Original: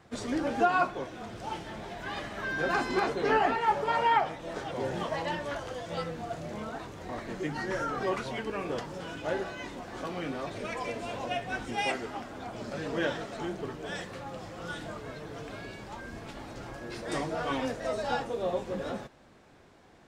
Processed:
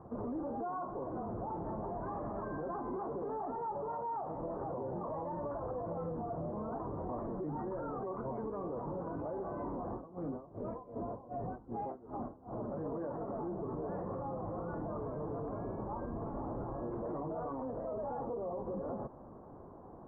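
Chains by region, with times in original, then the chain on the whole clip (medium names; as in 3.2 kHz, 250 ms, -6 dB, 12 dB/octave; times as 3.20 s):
9.90–12.53 s: bass shelf 420 Hz +6 dB + logarithmic tremolo 2.6 Hz, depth 28 dB
whole clip: elliptic low-pass 1.1 kHz, stop band 80 dB; compression 5:1, threshold -36 dBFS; peak limiter -39 dBFS; trim +7 dB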